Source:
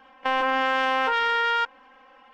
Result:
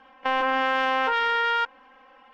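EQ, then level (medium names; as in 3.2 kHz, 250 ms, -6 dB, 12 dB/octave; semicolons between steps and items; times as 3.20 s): distance through air 51 m; 0.0 dB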